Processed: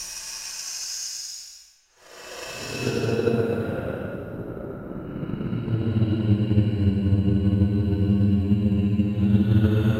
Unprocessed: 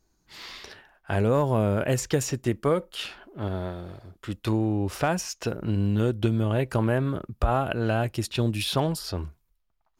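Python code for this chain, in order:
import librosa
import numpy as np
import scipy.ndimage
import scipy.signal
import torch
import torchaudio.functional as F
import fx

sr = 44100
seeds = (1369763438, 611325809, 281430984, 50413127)

y = fx.paulstretch(x, sr, seeds[0], factor=13.0, window_s=0.1, from_s=5.23)
y = fx.transient(y, sr, attack_db=7, sustain_db=0)
y = fx.rev_spring(y, sr, rt60_s=2.4, pass_ms=(35,), chirp_ms=75, drr_db=8.5)
y = y * 10.0 ** (1.0 / 20.0)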